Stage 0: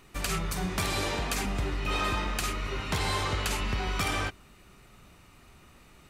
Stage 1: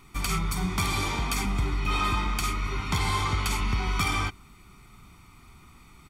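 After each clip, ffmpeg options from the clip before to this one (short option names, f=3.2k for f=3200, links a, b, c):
-af "aecho=1:1:0.9:0.7"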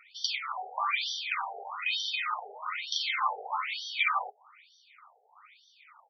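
-af "afftfilt=real='re*between(b*sr/1024,580*pow(4400/580,0.5+0.5*sin(2*PI*1.1*pts/sr))/1.41,580*pow(4400/580,0.5+0.5*sin(2*PI*1.1*pts/sr))*1.41)':imag='im*between(b*sr/1024,580*pow(4400/580,0.5+0.5*sin(2*PI*1.1*pts/sr))/1.41,580*pow(4400/580,0.5+0.5*sin(2*PI*1.1*pts/sr))*1.41)':win_size=1024:overlap=0.75,volume=5dB"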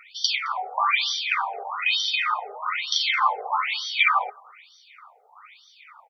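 -filter_complex "[0:a]asplit=2[a][b];[b]adelay=215.7,volume=-28dB,highshelf=f=4k:g=-4.85[c];[a][c]amix=inputs=2:normalize=0,volume=8dB"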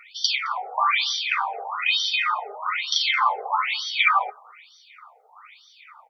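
-af "flanger=delay=4.2:depth=3.3:regen=-53:speed=0.44:shape=triangular,volume=5dB"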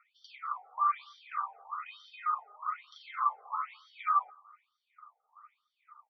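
-af "bandpass=f=1.2k:t=q:w=8.3:csg=0,volume=-4.5dB"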